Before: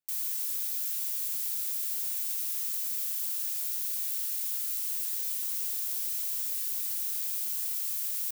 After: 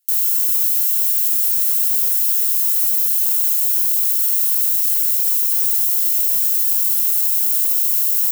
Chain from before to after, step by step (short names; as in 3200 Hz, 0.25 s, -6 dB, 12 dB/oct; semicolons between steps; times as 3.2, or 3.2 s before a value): one-sided fold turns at -28.5 dBFS; HPF 590 Hz 24 dB/oct; differentiator; notch comb 1200 Hz; soft clip -20 dBFS, distortion -25 dB; flange 1 Hz, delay 3.2 ms, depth 1.1 ms, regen -43%; maximiser +34 dB; gain -8 dB